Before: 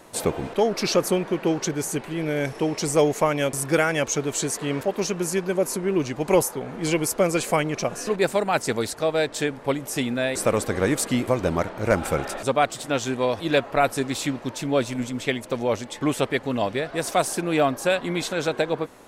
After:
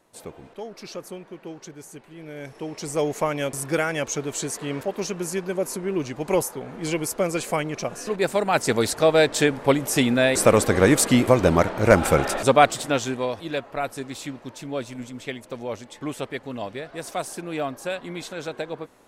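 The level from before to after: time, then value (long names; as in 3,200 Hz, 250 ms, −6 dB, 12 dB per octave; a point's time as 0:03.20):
0:02.10 −15 dB
0:03.19 −3 dB
0:08.05 −3 dB
0:08.97 +5.5 dB
0:12.68 +5.5 dB
0:13.53 −7.5 dB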